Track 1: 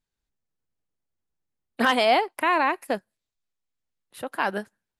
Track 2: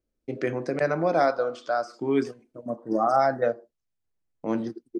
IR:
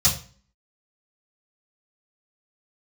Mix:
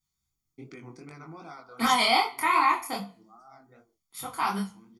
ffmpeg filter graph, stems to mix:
-filter_complex "[0:a]bass=f=250:g=-7,treble=f=4000:g=0,volume=0.531,asplit=3[s0][s1][s2];[s1]volume=0.282[s3];[1:a]alimiter=limit=0.1:level=0:latency=1:release=298,adelay=300,volume=0.299[s4];[s2]apad=whole_len=233530[s5];[s4][s5]sidechaincompress=threshold=0.00891:ratio=8:attack=5.8:release=1150[s6];[2:a]atrim=start_sample=2205[s7];[s3][s7]afir=irnorm=-1:irlink=0[s8];[s0][s6][s8]amix=inputs=3:normalize=0,highshelf=f=5400:g=10.5,aecho=1:1:0.9:0.9,flanger=delay=19.5:depth=6.8:speed=2.6"

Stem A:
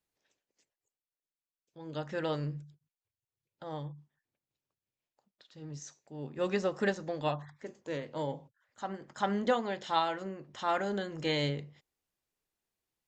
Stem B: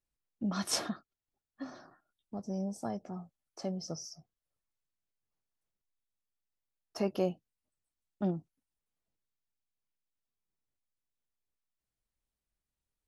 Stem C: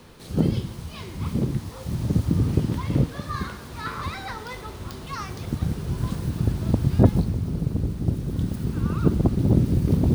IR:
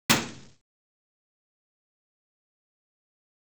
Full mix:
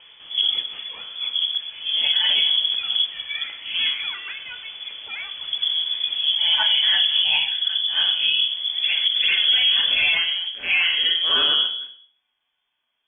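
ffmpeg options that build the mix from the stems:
-filter_complex "[0:a]lowshelf=f=220:g=-3.5,volume=1.41,asplit=2[s0][s1];[s1]volume=0.335[s2];[1:a]volume=0.708[s3];[2:a]volume=1.06[s4];[3:a]atrim=start_sample=2205[s5];[s2][s5]afir=irnorm=-1:irlink=0[s6];[s0][s3][s4][s6]amix=inputs=4:normalize=0,lowpass=f=3000:t=q:w=0.5098,lowpass=f=3000:t=q:w=0.6013,lowpass=f=3000:t=q:w=0.9,lowpass=f=3000:t=q:w=2.563,afreqshift=-3500,alimiter=limit=0.299:level=0:latency=1:release=45"

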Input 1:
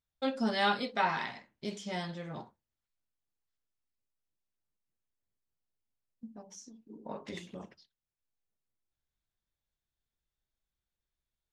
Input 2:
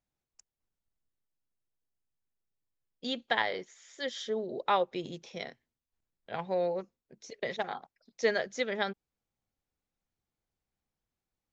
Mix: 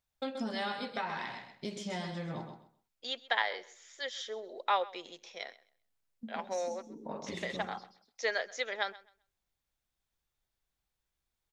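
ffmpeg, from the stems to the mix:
-filter_complex "[0:a]acompressor=threshold=0.0141:ratio=4,volume=1.26,asplit=2[s0][s1];[s1]volume=0.422[s2];[1:a]highpass=640,volume=0.944,asplit=2[s3][s4];[s4]volume=0.1[s5];[s2][s5]amix=inputs=2:normalize=0,aecho=0:1:130|260|390:1|0.21|0.0441[s6];[s0][s3][s6]amix=inputs=3:normalize=0"

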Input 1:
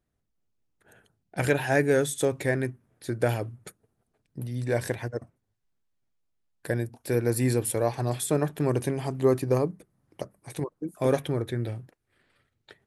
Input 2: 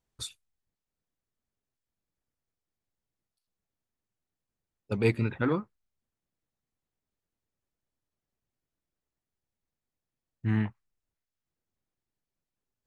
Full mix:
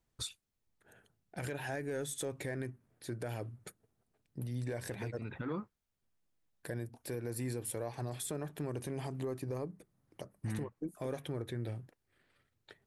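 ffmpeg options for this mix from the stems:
-filter_complex "[0:a]acompressor=threshold=0.0447:ratio=6,aeval=exprs='0.188*(cos(1*acos(clip(val(0)/0.188,-1,1)))-cos(1*PI/2))+0.0168*(cos(2*acos(clip(val(0)/0.188,-1,1)))-cos(2*PI/2))+0.00299*(cos(8*acos(clip(val(0)/0.188,-1,1)))-cos(8*PI/2))':c=same,volume=0.531,asplit=2[s0][s1];[1:a]acompressor=threshold=0.0447:ratio=12,alimiter=level_in=1.26:limit=0.0631:level=0:latency=1:release=222,volume=0.794,volume=1[s2];[s1]apad=whole_len=567460[s3];[s2][s3]sidechaincompress=threshold=0.00708:ratio=5:attack=11:release=220[s4];[s0][s4]amix=inputs=2:normalize=0,alimiter=level_in=1.78:limit=0.0631:level=0:latency=1:release=36,volume=0.562"

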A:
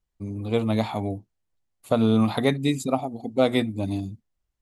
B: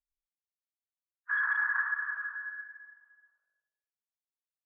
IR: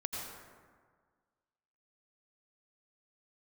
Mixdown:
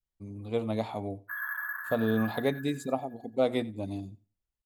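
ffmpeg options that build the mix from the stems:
-filter_complex "[0:a]adynamicequalizer=threshold=0.0224:dfrequency=530:dqfactor=0.95:tfrequency=530:tqfactor=0.95:attack=5:release=100:ratio=0.375:range=3:mode=boostabove:tftype=bell,volume=0.316,asplit=2[s0][s1];[s1]volume=0.0794[s2];[1:a]agate=range=0.0224:threshold=0.00112:ratio=3:detection=peak,alimiter=limit=0.0631:level=0:latency=1:release=324,acrusher=samples=3:mix=1:aa=0.000001,volume=0.562,asplit=2[s3][s4];[s4]volume=0.562[s5];[s2][s5]amix=inputs=2:normalize=0,aecho=0:1:90|180|270:1|0.19|0.0361[s6];[s0][s3][s6]amix=inputs=3:normalize=0"

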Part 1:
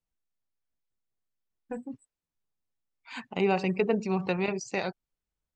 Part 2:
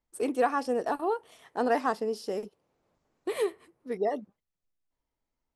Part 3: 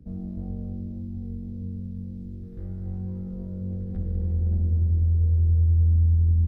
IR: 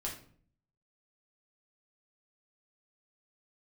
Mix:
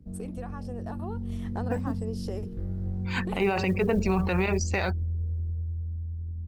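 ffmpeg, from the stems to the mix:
-filter_complex "[0:a]adynamicequalizer=threshold=0.00398:dfrequency=1600:dqfactor=1.1:tfrequency=1600:tqfactor=1.1:attack=5:release=100:ratio=0.375:range=3:mode=boostabove:tftype=bell,acrusher=bits=9:mode=log:mix=0:aa=0.000001,volume=1,asplit=2[s0][s1];[1:a]acompressor=threshold=0.0141:ratio=8,volume=0.75[s2];[2:a]acompressor=threshold=0.0355:ratio=16,volume=0.708[s3];[s1]apad=whole_len=244927[s4];[s2][s4]sidechaincompress=threshold=0.0158:ratio=8:attack=34:release=545[s5];[s0][s5][s3]amix=inputs=3:normalize=0,dynaudnorm=f=210:g=11:m=2,alimiter=limit=0.168:level=0:latency=1:release=39"

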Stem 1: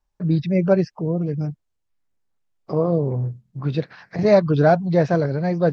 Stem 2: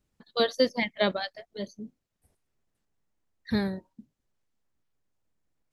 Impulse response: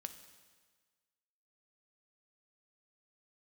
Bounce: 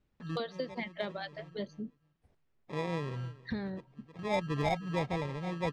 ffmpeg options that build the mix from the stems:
-filter_complex "[0:a]acrusher=samples=30:mix=1:aa=0.000001,volume=0.178,asplit=2[s0][s1];[s1]volume=0.106[s2];[1:a]acompressor=threshold=0.02:ratio=12,volume=1.12,asplit=2[s3][s4];[s4]apad=whole_len=252613[s5];[s0][s5]sidechaincompress=threshold=0.00158:ratio=4:attack=32:release=420[s6];[s2]aecho=0:1:314|628|942:1|0.19|0.0361[s7];[s6][s3][s7]amix=inputs=3:normalize=0,lowpass=3500,volume=15,asoftclip=hard,volume=0.0668"

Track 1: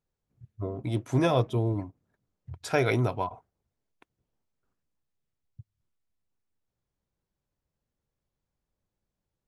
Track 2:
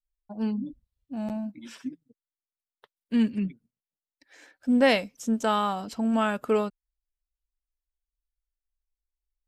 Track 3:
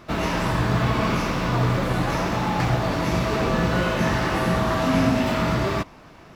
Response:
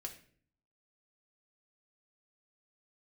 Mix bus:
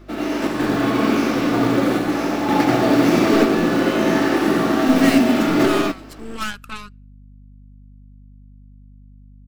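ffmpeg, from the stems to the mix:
-filter_complex "[0:a]lowpass=1500,aeval=exprs='val(0)+0.00251*(sin(2*PI*50*n/s)+sin(2*PI*2*50*n/s)/2+sin(2*PI*3*50*n/s)/3+sin(2*PI*4*50*n/s)/4+sin(2*PI*5*50*n/s)/5)':c=same,volume=0.266,asplit=2[s0][s1];[1:a]firequalizer=gain_entry='entry(300,0);entry(430,-18);entry(1300,10)':delay=0.05:min_phase=1,aeval=exprs='0.224*(cos(1*acos(clip(val(0)/0.224,-1,1)))-cos(1*PI/2))+0.0398*(cos(3*acos(clip(val(0)/0.224,-1,1)))-cos(3*PI/2))+0.0708*(cos(4*acos(clip(val(0)/0.224,-1,1)))-cos(4*PI/2))':c=same,adelay=200,volume=0.251,asplit=2[s2][s3];[s3]volume=0.0944[s4];[2:a]highpass=f=280:t=q:w=3.4,bandreject=f=1000:w=8.3,acrusher=bits=7:mode=log:mix=0:aa=0.000001,volume=0.841,asplit=3[s5][s6][s7];[s6]volume=0.473[s8];[s7]volume=0.668[s9];[s1]apad=whole_len=280249[s10];[s5][s10]sidechaingate=range=0.355:threshold=0.00112:ratio=16:detection=peak[s11];[3:a]atrim=start_sample=2205[s12];[s4][s8]amix=inputs=2:normalize=0[s13];[s13][s12]afir=irnorm=-1:irlink=0[s14];[s9]aecho=0:1:89:1[s15];[s0][s2][s11][s14][s15]amix=inputs=5:normalize=0,dynaudnorm=f=410:g=11:m=2.37,aeval=exprs='val(0)+0.00631*(sin(2*PI*50*n/s)+sin(2*PI*2*50*n/s)/2+sin(2*PI*3*50*n/s)/3+sin(2*PI*4*50*n/s)/4+sin(2*PI*5*50*n/s)/5)':c=same"

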